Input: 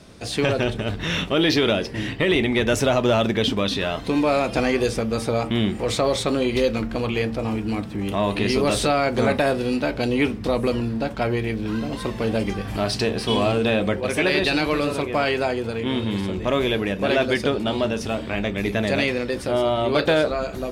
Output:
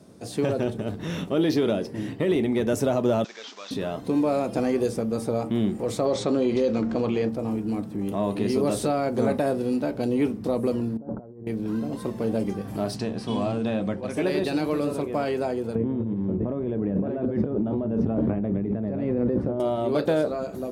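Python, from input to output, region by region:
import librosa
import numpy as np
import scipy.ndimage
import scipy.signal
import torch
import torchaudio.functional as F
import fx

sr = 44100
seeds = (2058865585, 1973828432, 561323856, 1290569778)

y = fx.chain(x, sr, fx.delta_mod(bps=32000, step_db=-30.5),
    fx.highpass(hz=1300.0, slope=12),
    fx.high_shelf(hz=4500.0, db=6.0), at=(3.24, 3.71))
y = fx.chain(y, sr, fx.lowpass(hz=6900.0, slope=24),
    fx.peak_eq(hz=93.0, db=-4.0, octaves=2.3),
    fx.env_flatten(amount_pct=50), at=(6.05, 7.29))
y = fx.chain(y, sr, fx.gaussian_blur(sigma=8.2),
    fx.over_compress(threshold_db=-32.0, ratio=-0.5), at=(10.97, 11.47))
y = fx.chain(y, sr, fx.lowpass(hz=7100.0, slope=12),
    fx.peak_eq(hz=420.0, db=-7.5, octaves=0.69), at=(12.96, 14.17))
y = fx.chain(y, sr, fx.lowpass(hz=1500.0, slope=12),
    fx.low_shelf(hz=320.0, db=11.5),
    fx.over_compress(threshold_db=-23.0, ratio=-1.0), at=(15.75, 19.6))
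y = scipy.signal.sosfilt(scipy.signal.butter(2, 140.0, 'highpass', fs=sr, output='sos'), y)
y = fx.peak_eq(y, sr, hz=2700.0, db=-15.0, octaves=2.8)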